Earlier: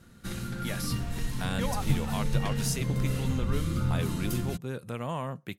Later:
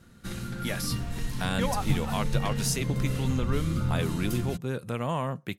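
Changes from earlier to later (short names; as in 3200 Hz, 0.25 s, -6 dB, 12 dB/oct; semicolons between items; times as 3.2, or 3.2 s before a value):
speech +4.0 dB; master: add high shelf 12000 Hz -3.5 dB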